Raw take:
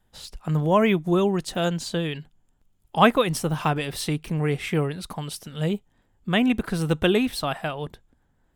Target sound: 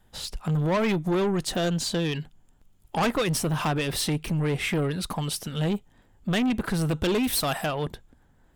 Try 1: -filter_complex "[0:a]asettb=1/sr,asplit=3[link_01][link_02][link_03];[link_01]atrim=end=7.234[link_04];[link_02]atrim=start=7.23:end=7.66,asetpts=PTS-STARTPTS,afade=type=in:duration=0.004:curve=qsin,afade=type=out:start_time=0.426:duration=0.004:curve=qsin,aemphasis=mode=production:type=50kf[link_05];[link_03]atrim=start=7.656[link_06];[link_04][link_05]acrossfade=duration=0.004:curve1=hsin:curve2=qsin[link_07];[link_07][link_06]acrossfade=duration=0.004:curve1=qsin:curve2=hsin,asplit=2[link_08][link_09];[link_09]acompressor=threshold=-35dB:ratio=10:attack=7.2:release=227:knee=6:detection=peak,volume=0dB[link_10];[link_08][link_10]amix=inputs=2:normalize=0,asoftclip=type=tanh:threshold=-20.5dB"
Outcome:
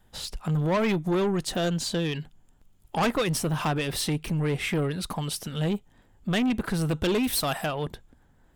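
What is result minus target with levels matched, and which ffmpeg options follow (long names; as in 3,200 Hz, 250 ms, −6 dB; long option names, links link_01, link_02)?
downward compressor: peak gain reduction +7 dB
-filter_complex "[0:a]asettb=1/sr,asplit=3[link_01][link_02][link_03];[link_01]atrim=end=7.234[link_04];[link_02]atrim=start=7.23:end=7.66,asetpts=PTS-STARTPTS,afade=type=in:duration=0.004:curve=qsin,afade=type=out:start_time=0.426:duration=0.004:curve=qsin,aemphasis=mode=production:type=50kf[link_05];[link_03]atrim=start=7.656[link_06];[link_04][link_05]acrossfade=duration=0.004:curve1=hsin:curve2=qsin[link_07];[link_07][link_06]acrossfade=duration=0.004:curve1=qsin:curve2=hsin,asplit=2[link_08][link_09];[link_09]acompressor=threshold=-27dB:ratio=10:attack=7.2:release=227:knee=6:detection=peak,volume=0dB[link_10];[link_08][link_10]amix=inputs=2:normalize=0,asoftclip=type=tanh:threshold=-20.5dB"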